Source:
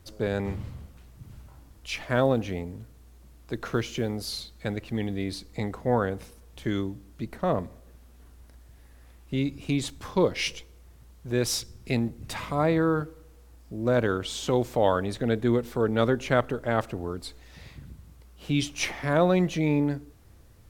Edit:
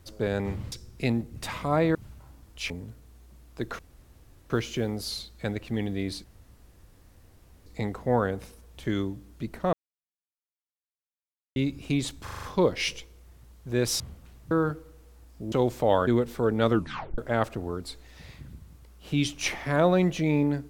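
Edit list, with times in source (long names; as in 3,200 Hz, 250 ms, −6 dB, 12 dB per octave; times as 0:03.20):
0:00.72–0:01.23: swap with 0:11.59–0:12.82
0:01.98–0:02.62: remove
0:03.71: splice in room tone 0.71 s
0:05.45: splice in room tone 1.42 s
0:07.52–0:09.35: silence
0:10.02: stutter 0.04 s, 6 plays
0:13.83–0:14.46: remove
0:15.01–0:15.44: remove
0:16.06: tape stop 0.49 s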